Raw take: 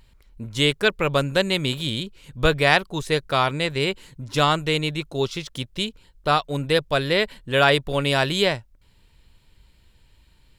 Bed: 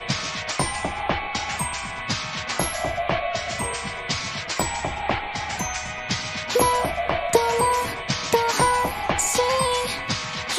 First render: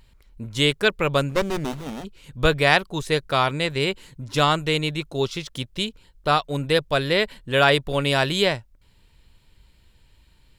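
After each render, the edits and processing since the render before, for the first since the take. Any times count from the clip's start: 1.29–2.05 s: sliding maximum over 17 samples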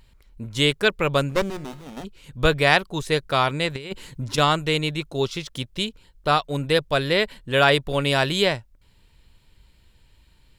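1.50–1.97 s: feedback comb 180 Hz, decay 0.5 s; 3.75–4.38 s: compressor with a negative ratio -28 dBFS, ratio -0.5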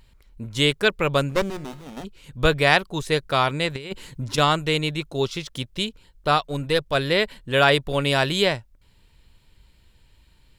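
6.48–6.95 s: partial rectifier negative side -3 dB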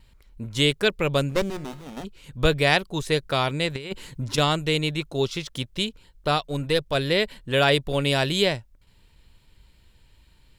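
gate with hold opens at -48 dBFS; dynamic bell 1.2 kHz, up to -6 dB, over -31 dBFS, Q 0.95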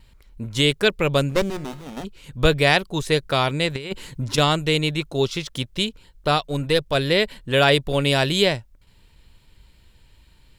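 trim +3 dB; peak limiter -3 dBFS, peak gain reduction 2 dB

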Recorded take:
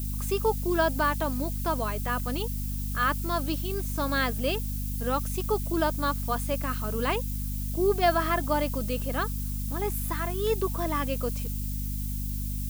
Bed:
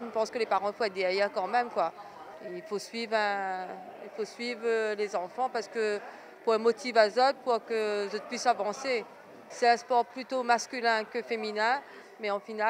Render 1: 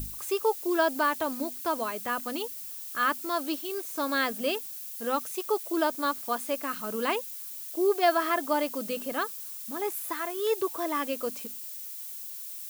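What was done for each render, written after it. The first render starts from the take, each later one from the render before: hum notches 50/100/150/200/250 Hz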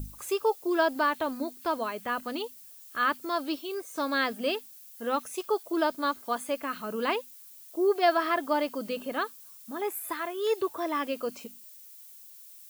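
noise print and reduce 10 dB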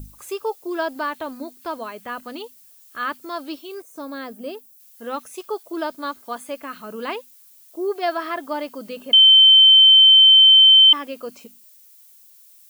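3.82–4.80 s: peaking EQ 2.6 kHz -11 dB 2.9 oct; 9.13–10.93 s: bleep 3.09 kHz -7 dBFS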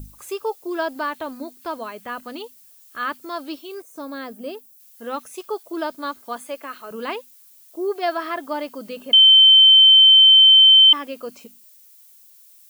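6.47–6.91 s: high-pass 300 Hz 24 dB/octave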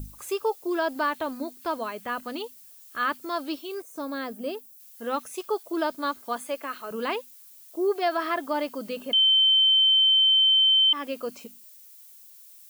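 compression 3:1, threshold -17 dBFS, peak gain reduction 6 dB; peak limiter -16 dBFS, peak gain reduction 7 dB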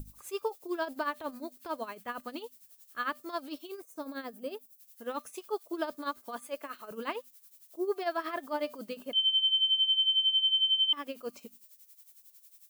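tremolo 11 Hz, depth 75%; feedback comb 600 Hz, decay 0.26 s, harmonics all, mix 40%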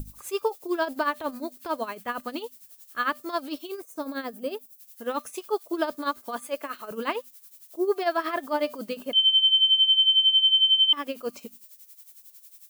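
trim +7 dB

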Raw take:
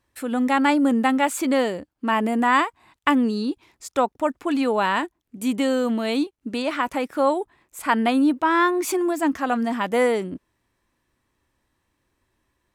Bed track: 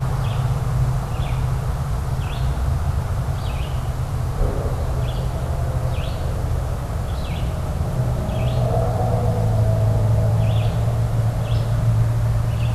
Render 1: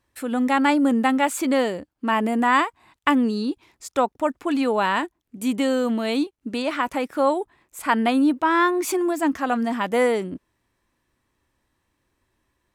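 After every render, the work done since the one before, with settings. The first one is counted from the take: no audible change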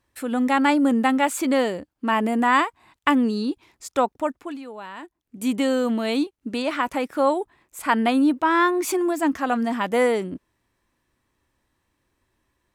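4.13–5.45 s: dip -16 dB, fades 0.48 s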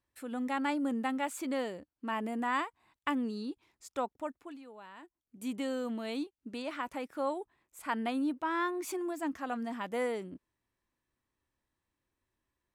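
trim -13.5 dB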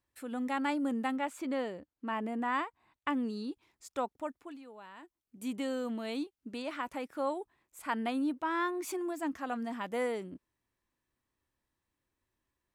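1.16–3.15 s: treble shelf 4.9 kHz -10 dB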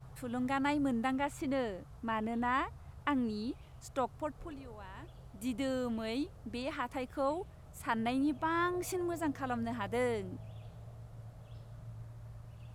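add bed track -30 dB

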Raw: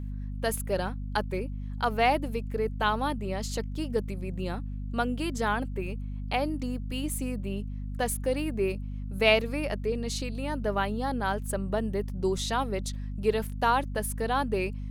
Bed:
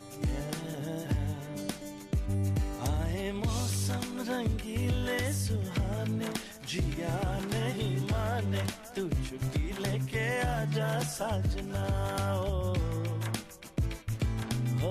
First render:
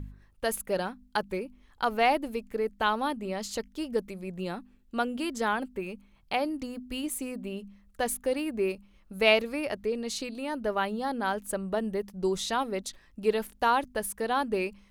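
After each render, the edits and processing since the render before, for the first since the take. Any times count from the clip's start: de-hum 50 Hz, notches 5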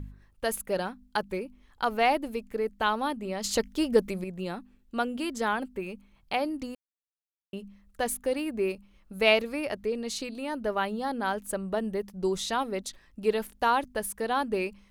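3.44–4.24 s: gain +7 dB; 6.75–7.53 s: mute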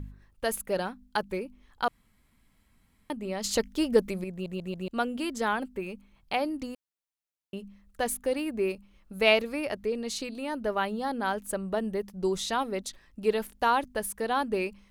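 1.88–3.10 s: room tone; 4.32 s: stutter in place 0.14 s, 4 plays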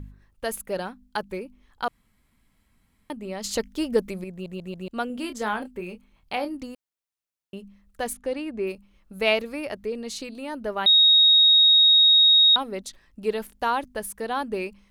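5.07–6.55 s: doubling 28 ms -8.5 dB; 8.13–8.67 s: distance through air 60 m; 10.86–12.56 s: bleep 3.76 kHz -12.5 dBFS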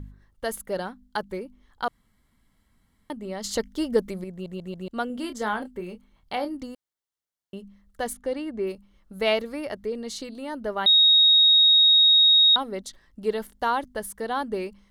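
treble shelf 9.1 kHz -3.5 dB; band-stop 2.5 kHz, Q 5.1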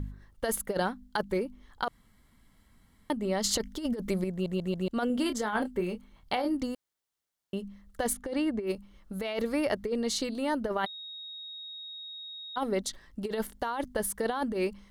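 peak limiter -18.5 dBFS, peak gain reduction 9 dB; compressor with a negative ratio -30 dBFS, ratio -0.5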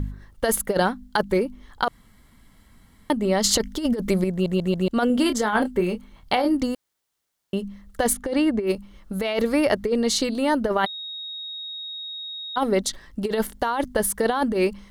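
trim +8.5 dB

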